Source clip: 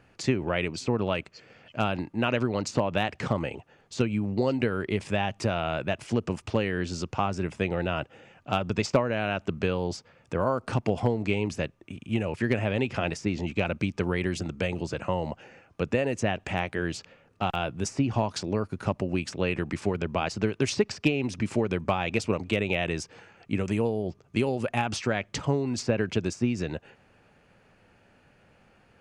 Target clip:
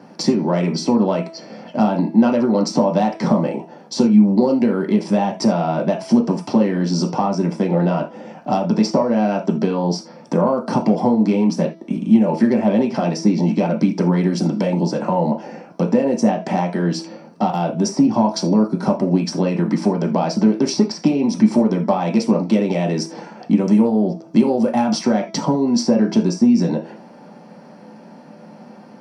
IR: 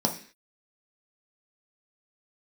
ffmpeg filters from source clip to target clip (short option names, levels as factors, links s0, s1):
-filter_complex "[0:a]highpass=f=180:w=0.5412,highpass=f=180:w=1.3066,bandreject=f=328.2:t=h:w=4,bandreject=f=656.4:t=h:w=4,bandreject=f=984.6:t=h:w=4,bandreject=f=1312.8:t=h:w=4,bandreject=f=1641:t=h:w=4,bandreject=f=1969.2:t=h:w=4,bandreject=f=2297.4:t=h:w=4,bandreject=f=2625.6:t=h:w=4,bandreject=f=2953.8:t=h:w=4,bandreject=f=3282:t=h:w=4,bandreject=f=3610.2:t=h:w=4,bandreject=f=3938.4:t=h:w=4,bandreject=f=4266.6:t=h:w=4,bandreject=f=4594.8:t=h:w=4,bandreject=f=4923:t=h:w=4,bandreject=f=5251.2:t=h:w=4,bandreject=f=5579.4:t=h:w=4,bandreject=f=5907.6:t=h:w=4,acompressor=threshold=0.01:ratio=2,asoftclip=type=tanh:threshold=0.0631[s0];[1:a]atrim=start_sample=2205,atrim=end_sample=3969[s1];[s0][s1]afir=irnorm=-1:irlink=0,volume=1.88"